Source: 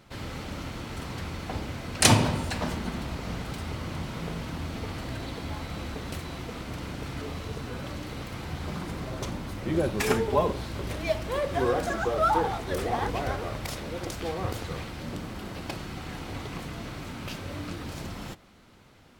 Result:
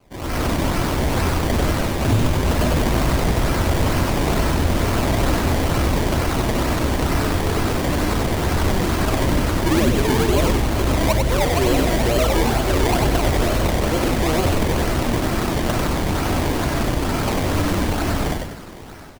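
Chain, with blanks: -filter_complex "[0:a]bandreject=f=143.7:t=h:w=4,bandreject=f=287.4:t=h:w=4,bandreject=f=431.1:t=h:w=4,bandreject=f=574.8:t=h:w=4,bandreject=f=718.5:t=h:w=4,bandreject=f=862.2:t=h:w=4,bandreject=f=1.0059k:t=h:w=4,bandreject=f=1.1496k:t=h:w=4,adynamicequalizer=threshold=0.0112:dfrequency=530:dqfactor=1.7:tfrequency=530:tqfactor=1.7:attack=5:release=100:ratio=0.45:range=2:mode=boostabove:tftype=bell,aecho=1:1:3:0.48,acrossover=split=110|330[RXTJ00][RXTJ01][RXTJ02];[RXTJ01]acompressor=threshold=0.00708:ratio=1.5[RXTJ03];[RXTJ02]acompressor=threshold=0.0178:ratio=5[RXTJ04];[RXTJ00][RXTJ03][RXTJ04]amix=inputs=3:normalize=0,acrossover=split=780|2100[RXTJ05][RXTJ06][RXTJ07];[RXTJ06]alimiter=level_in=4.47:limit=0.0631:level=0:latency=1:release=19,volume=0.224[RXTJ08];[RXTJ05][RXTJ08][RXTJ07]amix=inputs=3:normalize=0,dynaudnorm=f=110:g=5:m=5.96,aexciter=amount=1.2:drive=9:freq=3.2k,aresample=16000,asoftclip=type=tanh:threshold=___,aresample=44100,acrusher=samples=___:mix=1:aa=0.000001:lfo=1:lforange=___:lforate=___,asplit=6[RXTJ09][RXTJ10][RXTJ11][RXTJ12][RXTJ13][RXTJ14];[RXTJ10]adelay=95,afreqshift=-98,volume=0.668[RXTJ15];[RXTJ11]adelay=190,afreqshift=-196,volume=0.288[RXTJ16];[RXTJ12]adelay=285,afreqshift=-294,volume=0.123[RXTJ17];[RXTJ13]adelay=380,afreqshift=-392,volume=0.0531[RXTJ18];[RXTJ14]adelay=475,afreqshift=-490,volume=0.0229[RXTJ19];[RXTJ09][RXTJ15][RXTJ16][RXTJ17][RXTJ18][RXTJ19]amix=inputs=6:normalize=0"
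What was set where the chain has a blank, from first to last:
0.237, 23, 23, 2.2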